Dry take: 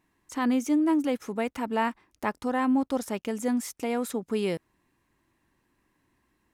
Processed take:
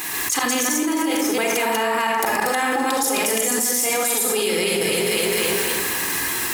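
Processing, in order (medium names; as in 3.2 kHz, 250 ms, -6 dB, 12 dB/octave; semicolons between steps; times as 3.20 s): chunks repeated in reverse 138 ms, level 0 dB; tilt EQ +4.5 dB/octave; echo whose repeats swap between lows and highs 128 ms, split 1.8 kHz, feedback 63%, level -10 dB; slow attack 144 ms; reverberation RT60 0.55 s, pre-delay 30 ms, DRR 2.5 dB; level flattener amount 100%; trim -1.5 dB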